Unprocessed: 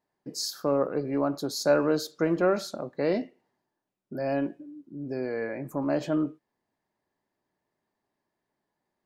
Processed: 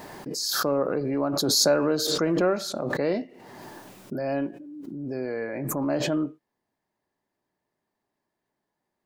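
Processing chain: swell ahead of each attack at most 24 dB/s

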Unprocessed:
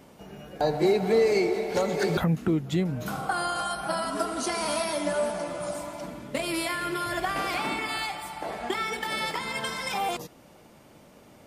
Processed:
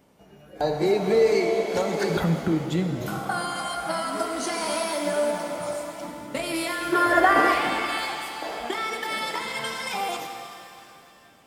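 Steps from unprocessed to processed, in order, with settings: time-frequency box 6.93–7.53 s, 220–2000 Hz +11 dB; spectral noise reduction 8 dB; pitch-shifted reverb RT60 2.6 s, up +7 st, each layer -8 dB, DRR 5.5 dB

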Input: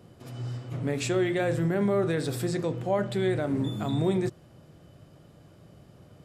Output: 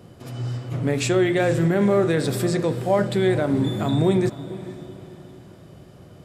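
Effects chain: echo that smears into a reverb 473 ms, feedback 43%, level -15 dB; trim +6.5 dB

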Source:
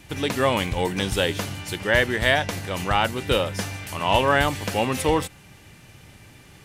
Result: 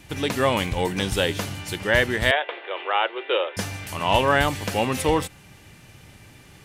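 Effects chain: 2.31–3.57 s: Chebyshev band-pass 350–3500 Hz, order 5

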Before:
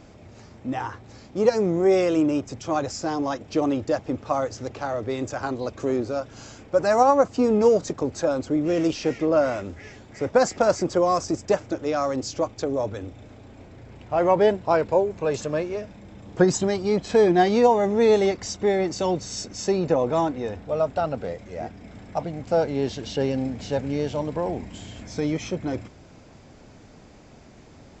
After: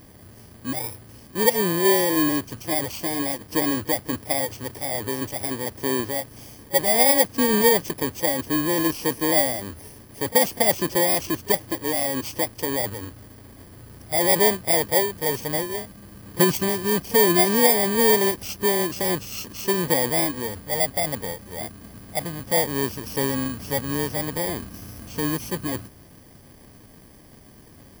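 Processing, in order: bit-reversed sample order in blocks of 32 samples; reverse echo 34 ms -22 dB

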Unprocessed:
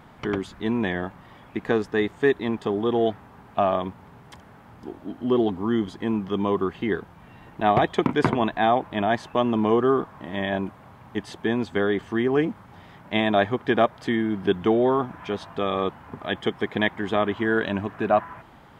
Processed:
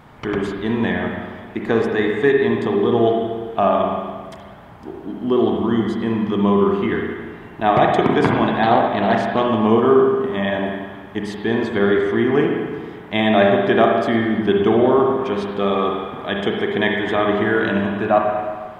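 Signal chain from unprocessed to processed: spring tank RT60 1.6 s, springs 35/55/60 ms, chirp 50 ms, DRR 0 dB; 8.63–9.46 s: loudspeaker Doppler distortion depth 0.18 ms; trim +3 dB

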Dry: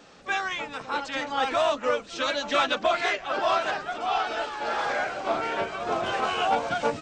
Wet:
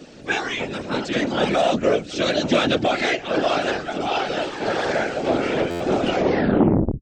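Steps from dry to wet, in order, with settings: tape stop on the ending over 0.98 s; graphic EQ 250/500/1000 Hz +11/+4/-11 dB; in parallel at +0.5 dB: peak limiter -17.5 dBFS, peak gain reduction 9.5 dB; on the sum: whisper effect; buffer glitch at 5.70 s, samples 512, times 8; transformer saturation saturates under 420 Hz

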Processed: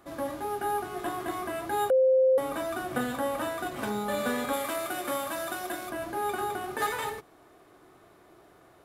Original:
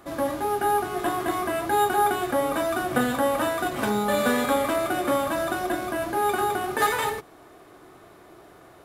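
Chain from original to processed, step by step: 1.90–2.38 s: bleep 522 Hz -11 dBFS; 4.53–5.90 s: tilt EQ +2 dB/octave; trim -7 dB

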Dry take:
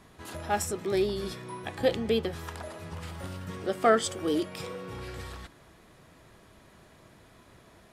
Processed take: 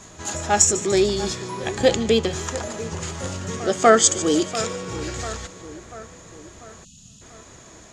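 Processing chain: resonant low-pass 6.8 kHz, resonance Q 9.4; two-band feedback delay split 2.1 kHz, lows 692 ms, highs 147 ms, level -14.5 dB; spectral selection erased 6.84–7.22 s, 270–2500 Hz; on a send: reverse echo 244 ms -21 dB; on the sum: trim +8 dB

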